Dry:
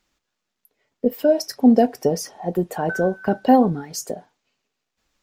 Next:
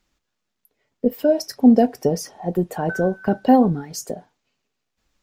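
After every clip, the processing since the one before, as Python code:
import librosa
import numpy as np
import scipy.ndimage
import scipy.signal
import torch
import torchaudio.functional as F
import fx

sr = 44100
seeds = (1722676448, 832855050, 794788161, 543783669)

y = fx.low_shelf(x, sr, hz=210.0, db=6.5)
y = y * 10.0 ** (-1.5 / 20.0)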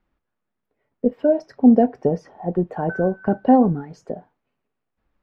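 y = scipy.signal.sosfilt(scipy.signal.butter(2, 1600.0, 'lowpass', fs=sr, output='sos'), x)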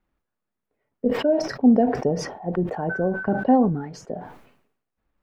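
y = fx.sustainer(x, sr, db_per_s=74.0)
y = y * 10.0 ** (-3.5 / 20.0)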